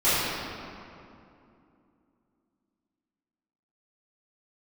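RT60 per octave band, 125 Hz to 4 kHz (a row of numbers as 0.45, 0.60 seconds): 3.0, 3.6, 2.8, 2.5, 2.1, 1.5 seconds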